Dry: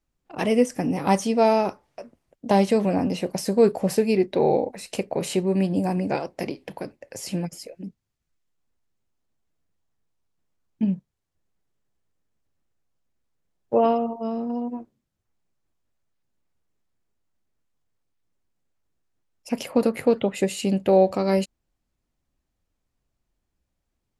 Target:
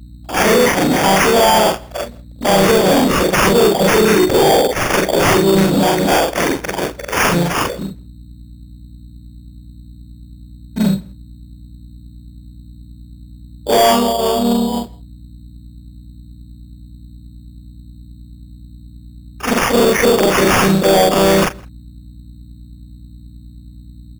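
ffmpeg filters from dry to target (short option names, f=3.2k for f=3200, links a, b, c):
-filter_complex "[0:a]afftfilt=real='re':imag='-im':win_size=4096:overlap=0.75,aemphasis=mode=production:type=riaa,agate=range=-18dB:threshold=-57dB:ratio=16:detection=peak,lowpass=6.6k,acontrast=80,alimiter=limit=-13.5dB:level=0:latency=1:release=58,acontrast=76,aeval=exprs='val(0)+0.00631*(sin(2*PI*60*n/s)+sin(2*PI*2*60*n/s)/2+sin(2*PI*3*60*n/s)/3+sin(2*PI*4*60*n/s)/4+sin(2*PI*5*60*n/s)/5)':c=same,asplit=2[a][b];[b]asetrate=37084,aresample=44100,atempo=1.18921,volume=-6dB[c];[a][c]amix=inputs=2:normalize=0,acrusher=samples=11:mix=1:aa=0.000001,asoftclip=type=tanh:threshold=-15dB,asplit=2[d][e];[e]adelay=163.3,volume=-26dB,highshelf=f=4k:g=-3.67[f];[d][f]amix=inputs=2:normalize=0,volume=8dB"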